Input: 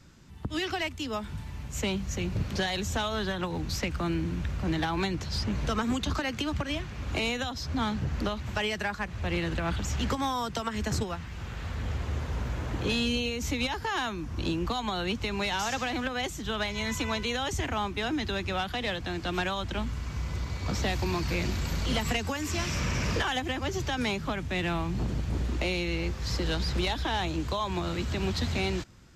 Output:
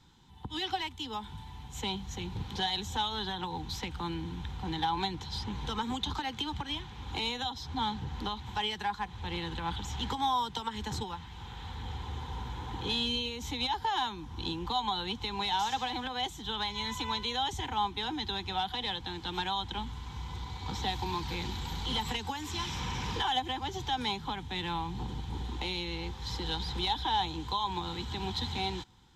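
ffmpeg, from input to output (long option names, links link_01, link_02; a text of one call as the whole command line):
ffmpeg -i in.wav -af "superequalizer=8b=0.316:9b=3.55:13b=3.16,volume=-7.5dB" out.wav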